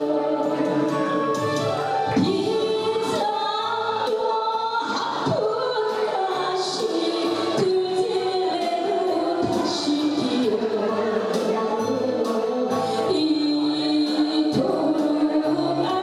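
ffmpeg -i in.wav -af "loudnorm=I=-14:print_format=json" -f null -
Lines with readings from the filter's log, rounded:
"input_i" : "-22.5",
"input_tp" : "-11.2",
"input_lra" : "1.5",
"input_thresh" : "-32.5",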